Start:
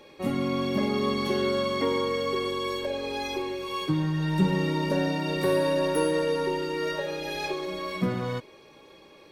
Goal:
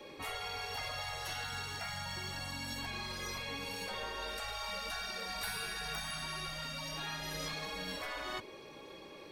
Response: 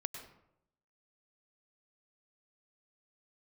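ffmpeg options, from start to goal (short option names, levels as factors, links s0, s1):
-af "adynamicequalizer=threshold=0.00794:dfrequency=140:dqfactor=1.9:tfrequency=140:tqfactor=1.9:attack=5:release=100:ratio=0.375:range=3:mode=cutabove:tftype=bell,afftfilt=real='re*lt(hypot(re,im),0.0562)':imag='im*lt(hypot(re,im),0.0562)':win_size=1024:overlap=0.75,volume=1.12"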